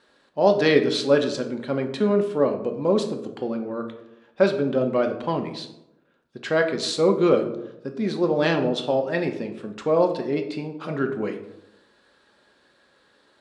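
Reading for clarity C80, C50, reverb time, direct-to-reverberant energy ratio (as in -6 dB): 12.5 dB, 10.0 dB, 0.90 s, 4.0 dB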